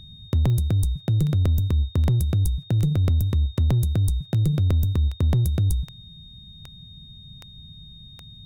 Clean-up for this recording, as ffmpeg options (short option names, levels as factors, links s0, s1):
-af "adeclick=t=4,bandreject=f=3700:w=30"